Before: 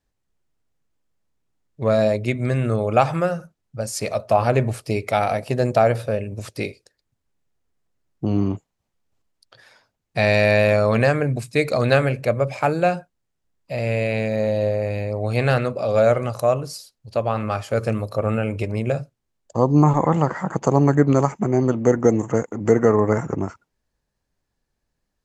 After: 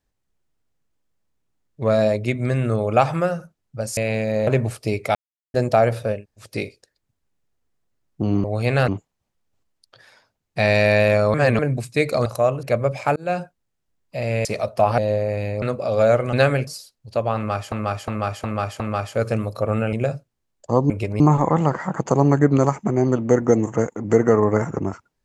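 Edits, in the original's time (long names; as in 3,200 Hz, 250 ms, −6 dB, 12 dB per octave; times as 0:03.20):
0:03.97–0:04.50: swap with 0:14.01–0:14.51
0:05.18–0:05.57: silence
0:06.21–0:06.47: fill with room tone, crossfade 0.16 s
0:10.93–0:11.18: reverse
0:11.85–0:12.19: swap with 0:16.30–0:16.67
0:12.72–0:12.97: fade in
0:15.15–0:15.59: move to 0:08.47
0:17.36–0:17.72: repeat, 5 plays
0:18.49–0:18.79: move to 0:19.76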